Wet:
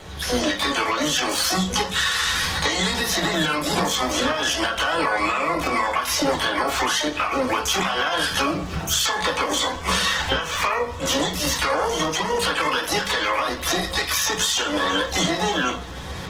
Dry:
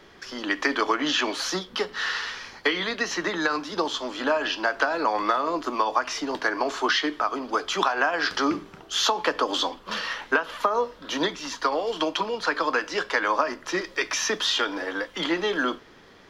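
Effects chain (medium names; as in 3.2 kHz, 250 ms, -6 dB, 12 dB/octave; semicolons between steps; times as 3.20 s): recorder AGC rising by 12 dB/s; in parallel at +2 dB: peak limiter -18.5 dBFS, peak gain reduction 11 dB; on the sum: compression 20:1, threshold -22 dBFS, peak gain reduction 10.5 dB; harmony voices +12 st -2 dB; de-hum 220.2 Hz, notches 30; on a send at -2 dB: reverberation RT60 0.35 s, pre-delay 3 ms; on the sum: Opus 16 kbps 48 kHz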